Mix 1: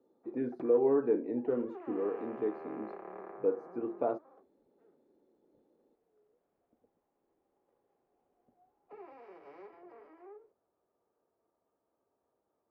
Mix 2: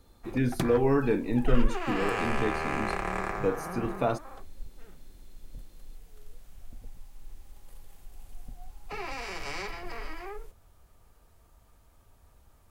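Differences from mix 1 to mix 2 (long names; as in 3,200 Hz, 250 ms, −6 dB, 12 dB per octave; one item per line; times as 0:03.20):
speech −7.5 dB
master: remove four-pole ladder band-pass 480 Hz, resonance 30%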